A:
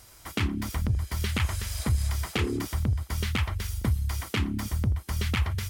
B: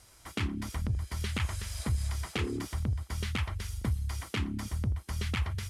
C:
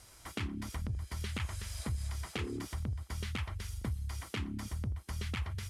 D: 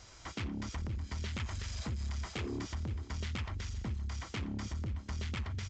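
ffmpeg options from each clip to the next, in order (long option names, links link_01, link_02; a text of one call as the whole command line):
ffmpeg -i in.wav -af "lowpass=frequency=12000:width=0.5412,lowpass=frequency=12000:width=1.3066,volume=-5dB" out.wav
ffmpeg -i in.wav -af "acompressor=threshold=-46dB:ratio=1.5,volume=1dB" out.wav
ffmpeg -i in.wav -af "aresample=16000,asoftclip=type=tanh:threshold=-36.5dB,aresample=44100,aecho=1:1:519|1038|1557|2076:0.15|0.0628|0.0264|0.0111,volume=3.5dB" out.wav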